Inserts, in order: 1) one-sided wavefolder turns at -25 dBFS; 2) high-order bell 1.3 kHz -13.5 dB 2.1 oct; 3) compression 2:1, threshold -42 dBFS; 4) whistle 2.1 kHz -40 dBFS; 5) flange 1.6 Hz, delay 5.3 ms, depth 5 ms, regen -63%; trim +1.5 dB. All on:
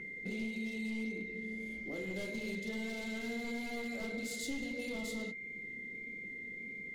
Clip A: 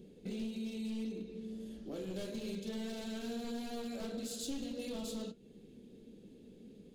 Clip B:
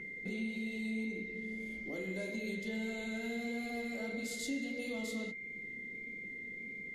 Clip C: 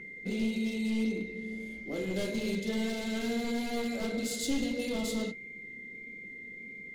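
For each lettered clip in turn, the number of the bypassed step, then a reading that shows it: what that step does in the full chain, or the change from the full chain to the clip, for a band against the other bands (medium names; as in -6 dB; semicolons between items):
4, 2 kHz band -17.0 dB; 1, distortion -7 dB; 3, mean gain reduction 5.5 dB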